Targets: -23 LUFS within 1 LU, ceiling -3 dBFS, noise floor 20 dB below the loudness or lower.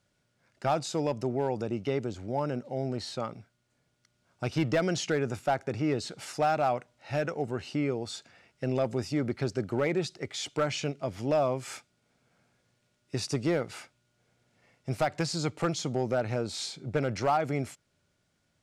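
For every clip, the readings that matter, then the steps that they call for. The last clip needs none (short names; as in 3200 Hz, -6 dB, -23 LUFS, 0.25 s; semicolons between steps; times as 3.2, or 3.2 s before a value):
clipped 0.4%; flat tops at -19.0 dBFS; loudness -31.0 LUFS; peak -19.0 dBFS; loudness target -23.0 LUFS
-> clip repair -19 dBFS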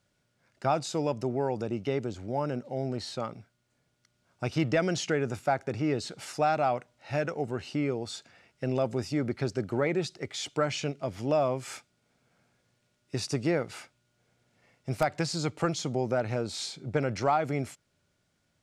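clipped 0.0%; loudness -31.0 LUFS; peak -13.5 dBFS; loudness target -23.0 LUFS
-> gain +8 dB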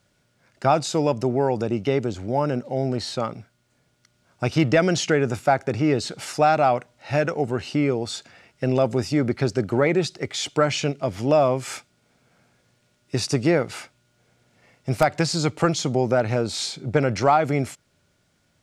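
loudness -23.0 LUFS; peak -5.5 dBFS; noise floor -67 dBFS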